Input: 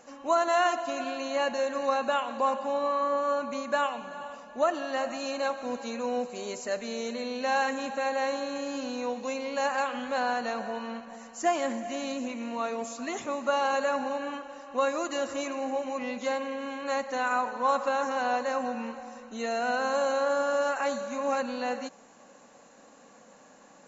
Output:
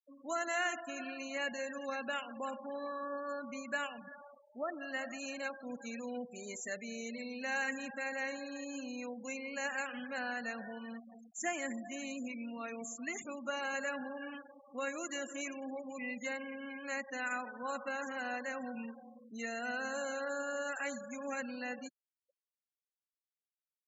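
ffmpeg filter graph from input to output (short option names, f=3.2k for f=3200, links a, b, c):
-filter_complex "[0:a]asettb=1/sr,asplit=3[a][b][c];[a]atrim=end=4.154[d];[b]atrim=start=4.15:end=4.81,asetpts=PTS-STARTPTS,afade=t=in:d=0.004:c=qsin,afade=t=out:st=0.656:d=0.004:c=qsin,lowpass=1.3k,equalizer=f=150:w=2:g=-4[e];[c]atrim=start=4.806[f];[d][e]acrossfade=d=0.004:c1=hsin:c2=qsin[g];[g][f]acrossfade=d=0.004:c1=qsin:c2=hsin,aemphasis=mode=production:type=50kf,afftfilt=real='re*gte(hypot(re,im),0.0224)':imag='im*gte(hypot(re,im),0.0224)':win_size=1024:overlap=0.75,equalizer=f=125:t=o:w=1:g=6,equalizer=f=500:t=o:w=1:g=-4,equalizer=f=1k:t=o:w=1:g=-11,equalizer=f=2k:t=o:w=1:g=10,equalizer=f=4k:t=o:w=1:g=-9,volume=-7dB"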